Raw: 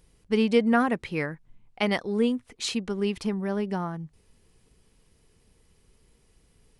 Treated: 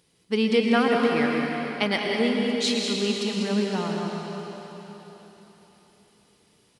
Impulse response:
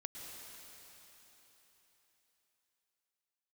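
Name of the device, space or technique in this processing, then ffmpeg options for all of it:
PA in a hall: -filter_complex "[0:a]highpass=150,equalizer=f=3900:t=o:w=1.1:g=6,aecho=1:1:194:0.355[s0];[1:a]atrim=start_sample=2205[s1];[s0][s1]afir=irnorm=-1:irlink=0,volume=1.68"

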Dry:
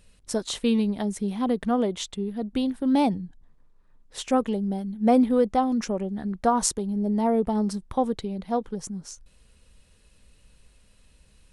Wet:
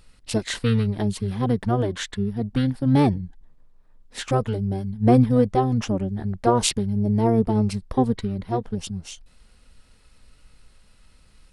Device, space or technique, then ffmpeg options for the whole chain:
octave pedal: -filter_complex "[0:a]asplit=2[s0][s1];[s1]asetrate=22050,aresample=44100,atempo=2,volume=1[s2];[s0][s2]amix=inputs=2:normalize=0"

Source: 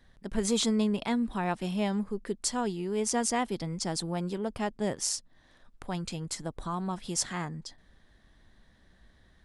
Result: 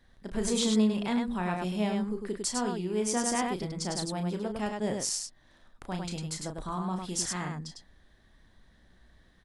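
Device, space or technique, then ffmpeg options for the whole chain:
slapback doubling: -filter_complex "[0:a]asplit=3[s0][s1][s2];[s1]adelay=33,volume=0.447[s3];[s2]adelay=102,volume=0.631[s4];[s0][s3][s4]amix=inputs=3:normalize=0,volume=0.794"

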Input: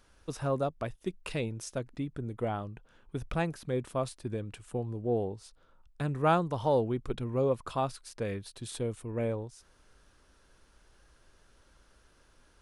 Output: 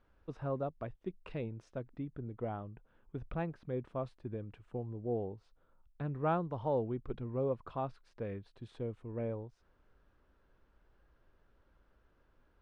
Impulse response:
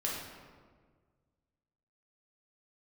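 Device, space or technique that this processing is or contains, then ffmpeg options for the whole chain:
phone in a pocket: -af "lowpass=3300,highshelf=f=2100:g=-10.5,volume=0.531"

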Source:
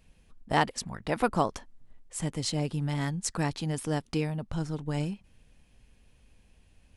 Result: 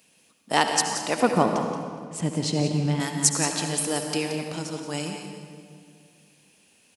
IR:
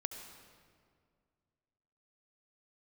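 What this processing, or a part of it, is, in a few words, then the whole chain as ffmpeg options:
PA in a hall: -filter_complex "[0:a]asettb=1/sr,asplit=3[s0][s1][s2];[s0]atrim=end=1.204[s3];[s1]atrim=start=1.2:end=3,asetpts=PTS-STARTPTS,afade=t=in:d=0.004:c=qsin,afade=t=out:st=1.796:d=0.004:c=qsin,aemphasis=mode=reproduction:type=riaa[s4];[s2]atrim=start=2.996[s5];[s3][s4]acrossfade=d=0.004:c1=hsin:c2=qsin[s6];[s6][s5]acrossfade=d=0.004:c1=qsin:c2=hsin,highpass=190,equalizer=f=2700:t=o:w=0.32:g=4,aecho=1:1:176:0.316[s7];[1:a]atrim=start_sample=2205[s8];[s7][s8]afir=irnorm=-1:irlink=0,highpass=110,bass=f=250:g=-3,treble=f=4000:g=11,aecho=1:1:208|416|624|832:0.126|0.0617|0.0302|0.0148,volume=1.78"

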